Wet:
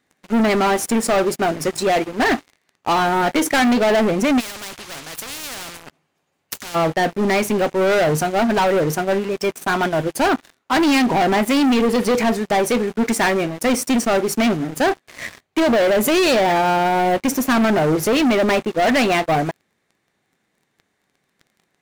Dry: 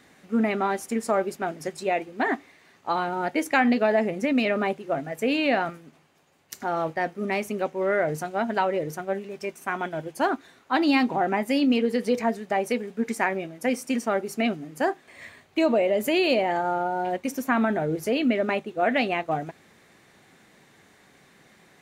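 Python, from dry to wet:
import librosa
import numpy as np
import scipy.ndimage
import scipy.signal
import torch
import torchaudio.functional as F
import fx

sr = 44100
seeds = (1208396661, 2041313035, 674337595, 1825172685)

y = fx.leveller(x, sr, passes=5)
y = fx.spectral_comp(y, sr, ratio=4.0, at=(4.39, 6.74), fade=0.02)
y = y * librosa.db_to_amplitude(-4.0)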